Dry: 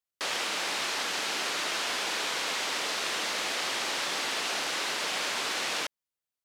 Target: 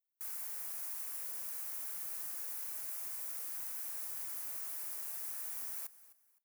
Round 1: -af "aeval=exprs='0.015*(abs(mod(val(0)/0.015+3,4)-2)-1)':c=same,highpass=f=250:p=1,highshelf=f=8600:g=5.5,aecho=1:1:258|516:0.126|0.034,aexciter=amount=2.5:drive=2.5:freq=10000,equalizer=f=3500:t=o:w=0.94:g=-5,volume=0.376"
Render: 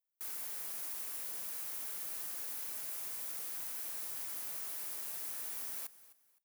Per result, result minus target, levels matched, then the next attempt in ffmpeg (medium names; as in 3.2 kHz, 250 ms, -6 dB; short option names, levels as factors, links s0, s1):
250 Hz band +7.0 dB; 4 kHz band +4.5 dB
-af "aeval=exprs='0.015*(abs(mod(val(0)/0.015+3,4)-2)-1)':c=same,highpass=f=810:p=1,highshelf=f=8600:g=5.5,aecho=1:1:258|516:0.126|0.034,aexciter=amount=2.5:drive=2.5:freq=10000,equalizer=f=3500:t=o:w=0.94:g=-5,volume=0.376"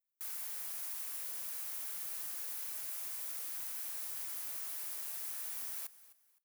4 kHz band +4.5 dB
-af "aeval=exprs='0.015*(abs(mod(val(0)/0.015+3,4)-2)-1)':c=same,highpass=f=810:p=1,highshelf=f=8600:g=5.5,aecho=1:1:258|516:0.126|0.034,aexciter=amount=2.5:drive=2.5:freq=10000,equalizer=f=3500:t=o:w=0.94:g=-13,volume=0.376"